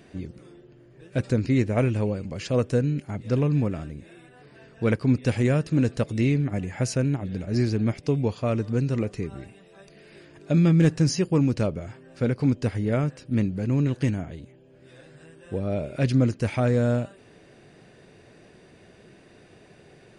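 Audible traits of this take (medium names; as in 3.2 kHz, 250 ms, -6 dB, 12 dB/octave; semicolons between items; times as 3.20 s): noise floor -53 dBFS; spectral tilt -8.0 dB/octave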